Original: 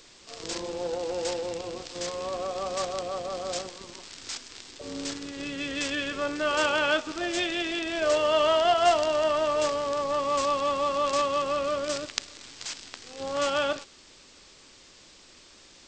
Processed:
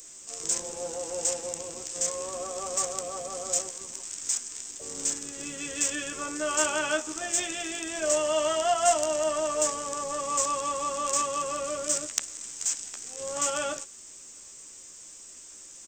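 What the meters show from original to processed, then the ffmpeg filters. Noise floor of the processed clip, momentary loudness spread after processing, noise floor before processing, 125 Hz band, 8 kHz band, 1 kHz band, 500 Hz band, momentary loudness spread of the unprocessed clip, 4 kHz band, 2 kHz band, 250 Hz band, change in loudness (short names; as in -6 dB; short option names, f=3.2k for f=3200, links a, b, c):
-47 dBFS, 18 LU, -53 dBFS, -5.0 dB, +12.5 dB, -3.0 dB, -4.0 dB, 15 LU, -4.5 dB, -4.0 dB, -5.0 dB, -1.0 dB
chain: -filter_complex "[0:a]acrossover=split=120|3000[a][b][c];[b]asplit=2[d][e];[e]adelay=13,volume=-2dB[f];[d][f]amix=inputs=2:normalize=0[g];[c]aexciter=amount=8.3:drive=9.3:freq=6.4k[h];[a][g][h]amix=inputs=3:normalize=0,volume=-6dB"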